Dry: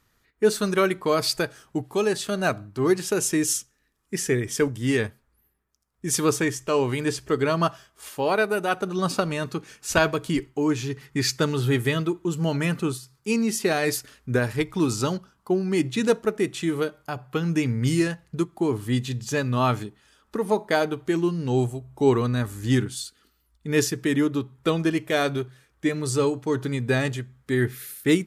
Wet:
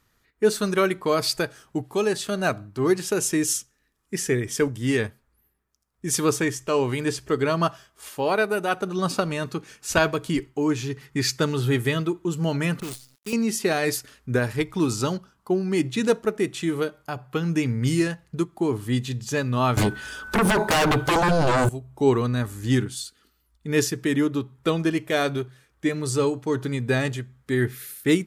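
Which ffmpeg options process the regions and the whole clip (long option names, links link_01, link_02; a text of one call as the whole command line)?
ffmpeg -i in.wav -filter_complex "[0:a]asettb=1/sr,asplit=3[link_01][link_02][link_03];[link_01]atrim=end=12.804[link_04];[link_02]atrim=start=12.8:end=13.33,asetpts=PTS-STARTPTS,afade=type=in:duration=0.004:curve=qsin,afade=type=out:start_time=0.526:duration=0.004:curve=qsin,acrossover=split=740|5800[link_05][link_06][link_07];[link_05]acompressor=threshold=-33dB:ratio=4[link_08];[link_06]acompressor=threshold=-47dB:ratio=4[link_09];[link_07]acompressor=threshold=-49dB:ratio=4[link_10];[link_08][link_09][link_10]amix=inputs=3:normalize=0,acrusher=bits=7:dc=4:mix=0:aa=0.000001,adynamicequalizer=threshold=0.00224:dfrequency=2200:dqfactor=0.7:tfrequency=2200:tqfactor=0.7:attack=5:release=100:ratio=0.375:range=3:mode=boostabove:tftype=highshelf[link_11];[link_03]atrim=start=13.326[link_12];[link_04][link_11]acrossfade=duration=0.004:curve1=hsin:curve2=qsin[link_13];[link_13][link_12]acrossfade=duration=0.004:curve1=qsin:curve2=hsin,asettb=1/sr,asplit=3[link_14][link_15][link_16];[link_14]atrim=end=19.774[link_17];[link_15]atrim=start=19.77:end=21.69,asetpts=PTS-STARTPTS,afade=type=in:duration=0.004:curve=qsin,afade=type=out:start_time=1.916:duration=0.004:curve=qsin,acompressor=threshold=-24dB:ratio=12:attack=3.2:release=140:knee=1:detection=peak,aeval=exprs='0.158*sin(PI/2*5.62*val(0)/0.158)':channel_layout=same,aeval=exprs='val(0)+0.0158*sin(2*PI*1500*n/s)':channel_layout=same[link_18];[link_16]atrim=start=21.686[link_19];[link_17][link_18]acrossfade=duration=0.004:curve1=hsin:curve2=qsin[link_20];[link_20][link_19]acrossfade=duration=0.004:curve1=qsin:curve2=hsin" out.wav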